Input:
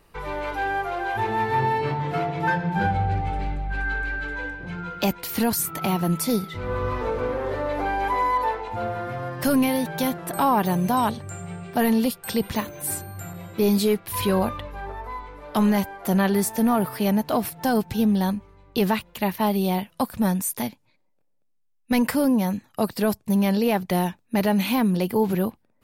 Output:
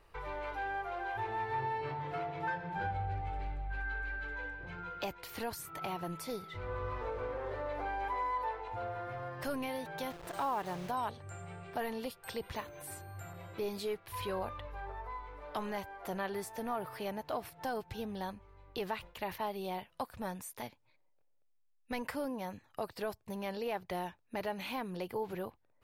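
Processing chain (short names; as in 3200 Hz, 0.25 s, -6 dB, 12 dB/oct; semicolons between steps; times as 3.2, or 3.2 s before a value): 10.1–10.91 level-crossing sampler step -31 dBFS; bell 210 Hz -13.5 dB 1 oct; compressor 1.5:1, threshold -44 dBFS, peak gain reduction 9.5 dB; high shelf 5400 Hz -11.5 dB; 18.94–19.43 sustainer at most 130 dB/s; gain -3.5 dB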